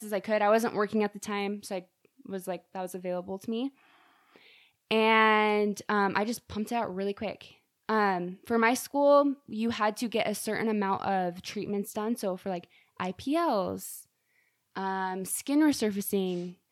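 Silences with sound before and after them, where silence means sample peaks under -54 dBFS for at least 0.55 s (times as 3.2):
14.04–14.76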